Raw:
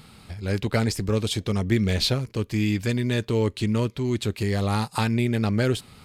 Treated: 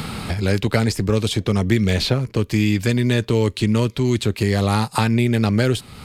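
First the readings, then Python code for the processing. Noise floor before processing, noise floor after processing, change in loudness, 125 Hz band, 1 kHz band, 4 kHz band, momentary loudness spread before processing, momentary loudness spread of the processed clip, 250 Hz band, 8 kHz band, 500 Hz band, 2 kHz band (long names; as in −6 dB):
−54 dBFS, −44 dBFS, +5.0 dB, +5.5 dB, +5.5 dB, +4.0 dB, 4 LU, 3 LU, +5.5 dB, +4.5 dB, +5.0 dB, +5.5 dB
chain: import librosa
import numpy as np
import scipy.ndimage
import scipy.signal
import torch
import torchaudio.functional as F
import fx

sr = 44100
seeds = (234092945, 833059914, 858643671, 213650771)

y = fx.band_squash(x, sr, depth_pct=70)
y = y * librosa.db_to_amplitude(5.0)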